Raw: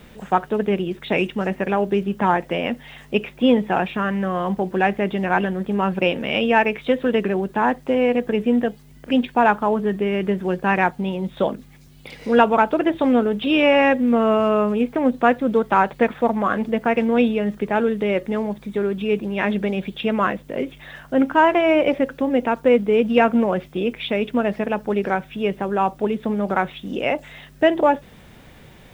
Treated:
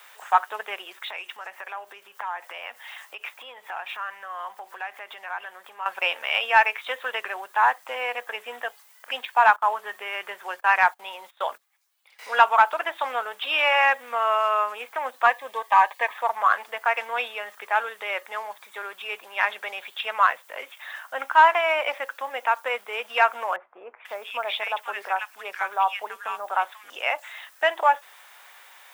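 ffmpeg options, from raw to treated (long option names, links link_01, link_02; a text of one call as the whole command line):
ffmpeg -i in.wav -filter_complex "[0:a]asettb=1/sr,asplit=3[link_01][link_02][link_03];[link_01]atrim=end=1.004[link_04];[link_02]atrim=start=1:end=5.86,asetpts=PTS-STARTPTS,afade=type=in:duration=0.004:curve=qsin,afade=type=out:start_time=4.856:duration=0.004:curve=qsin,acompressor=threshold=-26dB:ratio=8:attack=3.2:release=140:knee=1:detection=peak[link_05];[link_03]atrim=start=5.856[link_06];[link_04][link_05]acrossfade=duration=0.004:curve1=hsin:curve2=qsin[link_07];[link_07][link_06]acrossfade=duration=0.004:curve1=qsin:curve2=hsin,asettb=1/sr,asplit=3[link_08][link_09][link_10];[link_08]atrim=end=9.564[link_11];[link_09]atrim=start=9.56:end=12.19,asetpts=PTS-STARTPTS,afade=type=in:duration=0.004:curve=qsin,afade=type=out:start_time=2.626:duration=0.004:curve=qsin,agate=range=-19dB:threshold=-34dB:ratio=16:release=100:detection=peak[link_12];[link_10]atrim=start=12.186[link_13];[link_11][link_12]acrossfade=duration=0.004:curve1=hsin:curve2=qsin[link_14];[link_14][link_13]acrossfade=duration=0.004:curve1=qsin:curve2=hsin,asettb=1/sr,asplit=3[link_15][link_16][link_17];[link_15]atrim=end=15.264[link_18];[link_16]atrim=start=15.26:end=16.18,asetpts=PTS-STARTPTS,afade=type=in:duration=0.004:curve=qsin,afade=type=out:start_time=0.916:duration=0.004:curve=qsin,asuperstop=centerf=1400:order=8:qfactor=4.8[link_19];[link_17]atrim=start=16.176[link_20];[link_18][link_19]acrossfade=duration=0.004:curve1=hsin:curve2=qsin[link_21];[link_21][link_20]acrossfade=duration=0.004:curve1=qsin:curve2=hsin,asettb=1/sr,asplit=3[link_22][link_23][link_24];[link_22]atrim=end=23.564[link_25];[link_23]atrim=start=23.56:end=26.9,asetpts=PTS-STARTPTS,afade=type=in:duration=0.004:curve=qsin,afade=type=out:start_time=3.336:duration=0.004:curve=qsin,acrossover=split=1400[link_26][link_27];[link_27]adelay=490[link_28];[link_26][link_28]amix=inputs=2:normalize=0,atrim=end_sample=147294[link_29];[link_24]atrim=start=26.896[link_30];[link_25][link_29]acrossfade=duration=0.004:curve1=hsin:curve2=qsin[link_31];[link_31][link_30]acrossfade=duration=0.004:curve1=qsin:curve2=hsin,highpass=frequency=930:width=0.5412,highpass=frequency=930:width=1.3066,equalizer=frequency=3200:width_type=o:width=2.2:gain=-6.5,acontrast=70" out.wav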